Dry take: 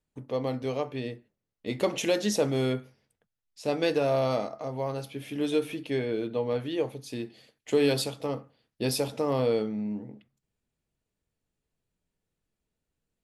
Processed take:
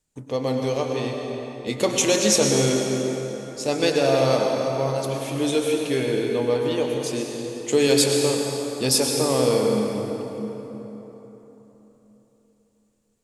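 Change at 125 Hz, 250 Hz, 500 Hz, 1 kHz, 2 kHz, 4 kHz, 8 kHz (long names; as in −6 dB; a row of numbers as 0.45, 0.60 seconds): +6.5, +6.5, +7.0, +7.0, +7.5, +11.0, +16.0 decibels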